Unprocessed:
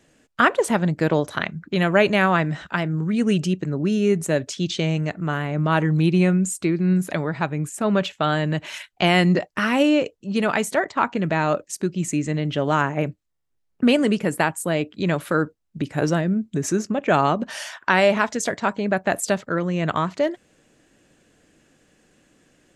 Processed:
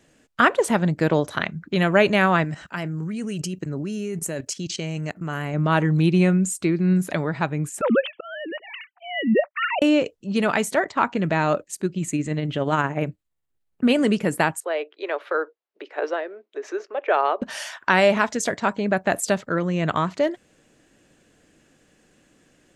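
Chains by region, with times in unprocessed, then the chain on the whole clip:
2.44–5.54 high shelf 5900 Hz +11 dB + level quantiser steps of 14 dB + notch 3600 Hz, Q 5.4
7.81–9.82 sine-wave speech + auto swell 0.496 s
11.62–13.97 bell 5500 Hz -6.5 dB 0.36 oct + tremolo 17 Hz, depth 35%
14.6–17.42 steep high-pass 380 Hz 48 dB/oct + air absorption 260 m
whole clip: dry

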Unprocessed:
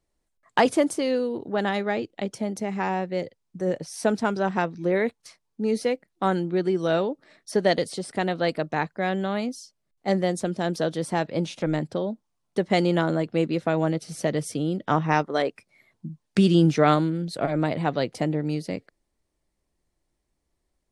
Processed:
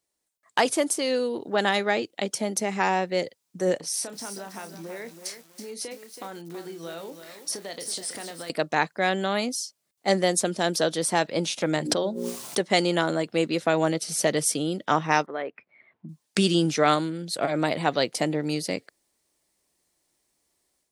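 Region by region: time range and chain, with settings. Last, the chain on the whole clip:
3.77–8.5 compressor, threshold -38 dBFS + doubler 30 ms -10 dB + lo-fi delay 0.326 s, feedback 35%, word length 9-bit, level -8.5 dB
11.75–12.61 notches 60/120/180/240/300/360/420/480/540 Hz + backwards sustainer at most 26 dB/s
15.26–16.09 LPF 2400 Hz 24 dB/oct + compressor 1.5:1, threshold -37 dBFS
whole clip: HPF 330 Hz 6 dB/oct; high shelf 3900 Hz +11.5 dB; AGC gain up to 8 dB; gain -4 dB

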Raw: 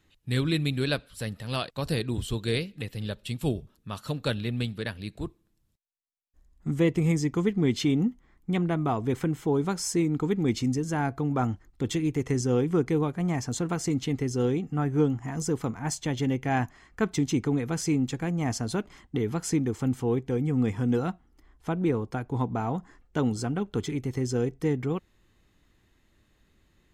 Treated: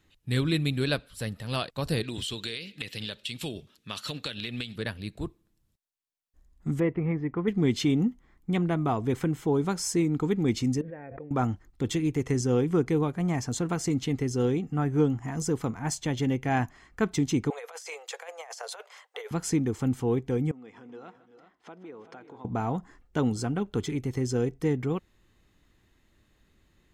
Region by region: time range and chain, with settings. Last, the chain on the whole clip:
2.03–4.76 weighting filter D + compressor 16:1, threshold -29 dBFS
6.8–7.48 LPF 2000 Hz 24 dB/oct + low shelf 360 Hz -5.5 dB
10.81–11.31 vocal tract filter e + backwards sustainer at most 25 dB/s
17.5–19.31 steep high-pass 470 Hz 72 dB/oct + negative-ratio compressor -39 dBFS, ratio -0.5
20.51–22.45 compressor 4:1, threshold -39 dBFS + BPF 360–4600 Hz + tapped delay 0.155/0.349/0.384 s -17.5/-18/-12.5 dB
whole clip: dry

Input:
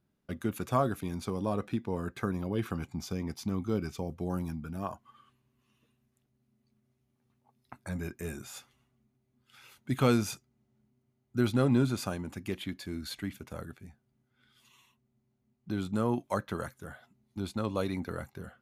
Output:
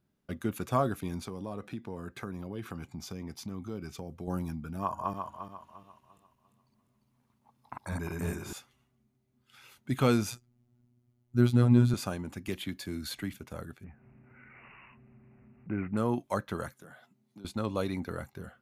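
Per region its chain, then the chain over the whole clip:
1.22–4.28 HPF 59 Hz + compressor 2:1, threshold -39 dBFS
4.79–8.53 regenerating reverse delay 0.174 s, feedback 58%, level -1 dB + bell 1000 Hz +9.5 dB 0.38 oct
10.3–11.94 low shelf 160 Hz +11 dB + robotiser 121 Hz
12.48–13.34 high shelf 6200 Hz +5 dB + three-band squash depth 40%
13.84–15.97 upward compressor, threshold -41 dBFS + careless resampling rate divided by 8×, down none, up filtered
16.72–17.45 HPF 130 Hz 24 dB/oct + compressor 5:1, threshold -47 dBFS
whole clip: dry

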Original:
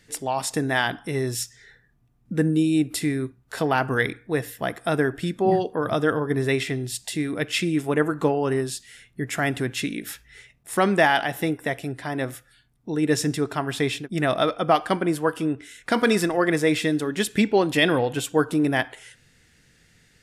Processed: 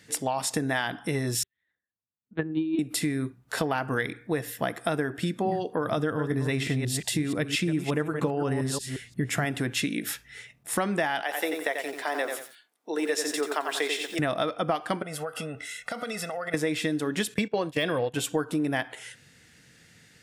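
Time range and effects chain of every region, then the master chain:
1.43–2.79 low shelf 170 Hz -9.5 dB + LPC vocoder at 8 kHz pitch kept + upward expander 2.5:1, over -40 dBFS
5.97–9.45 reverse delay 0.176 s, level -9 dB + low shelf 140 Hz +11 dB
11.22–14.19 HPF 390 Hz 24 dB/oct + lo-fi delay 89 ms, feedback 35%, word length 8-bit, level -6 dB
15.02–16.54 bell 100 Hz -7.5 dB 2.6 oct + comb 1.5 ms, depth 89% + compressor 12:1, threshold -32 dBFS
17.34–18.14 de-esser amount 55% + gate -26 dBFS, range -16 dB + comb 1.8 ms, depth 37%
whole clip: HPF 100 Hz; notch 390 Hz, Q 12; compressor, threshold -27 dBFS; gain +3 dB

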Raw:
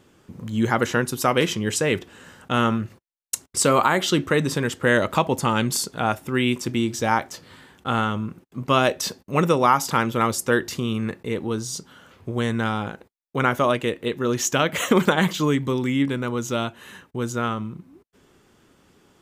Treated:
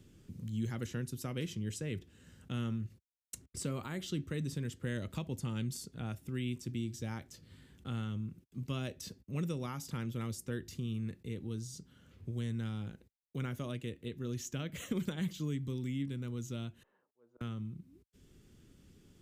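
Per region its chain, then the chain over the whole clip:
16.83–17.41 Butterworth band-pass 740 Hz, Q 1.3 + auto swell 0.621 s
whole clip: passive tone stack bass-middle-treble 10-0-1; three-band squash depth 40%; gain +3 dB

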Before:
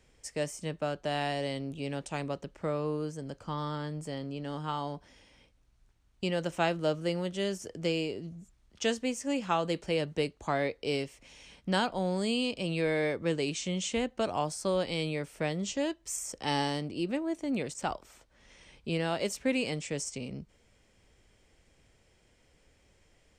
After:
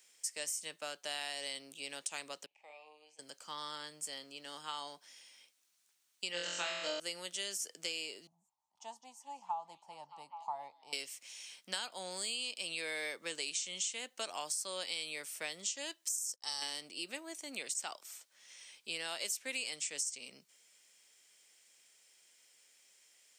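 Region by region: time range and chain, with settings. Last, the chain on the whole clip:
2.46–3.19 double band-pass 1400 Hz, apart 1.6 oct + doubler 46 ms -9 dB
6.32–7 steep low-pass 7700 Hz 72 dB/oct + notch 730 Hz, Q 6.5 + flutter echo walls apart 3.9 m, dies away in 0.91 s
8.27–10.93 EQ curve 110 Hz 0 dB, 480 Hz -21 dB, 880 Hz +13 dB, 1500 Hz -25 dB + delay with a stepping band-pass 0.206 s, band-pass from 4200 Hz, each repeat -0.7 oct, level -7.5 dB
16.09–16.62 EQ curve 120 Hz 0 dB, 240 Hz -13 dB, 1200 Hz -3 dB, 2500 Hz -15 dB, 5000 Hz +1 dB, 8600 Hz -3 dB + gate -50 dBFS, range -30 dB
whole clip: differentiator; compressor, threshold -44 dBFS; HPF 180 Hz 12 dB/oct; gain +9.5 dB

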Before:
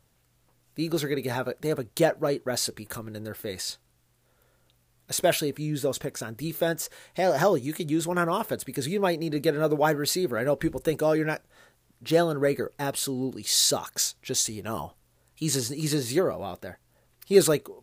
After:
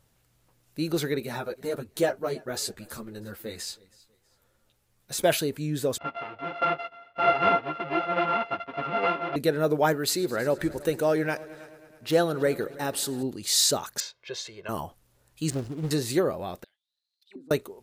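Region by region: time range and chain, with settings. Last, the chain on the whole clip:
1.2–5.23 feedback echo 0.321 s, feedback 32%, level -23 dB + ensemble effect
5.98–9.36 sample sorter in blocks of 64 samples + speaker cabinet 110–3000 Hz, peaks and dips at 120 Hz -8 dB, 210 Hz -8 dB, 540 Hz +5 dB, 900 Hz +8 dB, 1300 Hz +8 dB, 2700 Hz +5 dB + ensemble effect
9.93–13.23 low shelf 170 Hz -4.5 dB + multi-head echo 0.107 s, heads all three, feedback 50%, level -23.5 dB
14–14.69 HPF 710 Hz 6 dB/oct + air absorption 240 m + comb 1.9 ms, depth 88%
15.5–15.91 median filter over 41 samples + Doppler distortion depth 0.64 ms
16.64–17.51 high shelf 4800 Hz +10 dB + auto-wah 260–4300 Hz, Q 20, down, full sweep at -16.5 dBFS + compressor 2:1, threshold -46 dBFS
whole clip: dry

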